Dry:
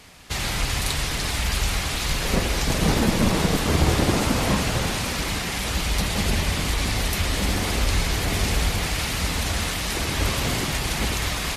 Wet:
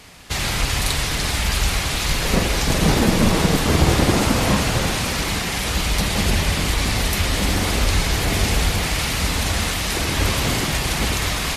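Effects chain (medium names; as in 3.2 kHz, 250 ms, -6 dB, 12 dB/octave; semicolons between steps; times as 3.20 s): flutter echo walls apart 7.6 m, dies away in 0.21 s; trim +3.5 dB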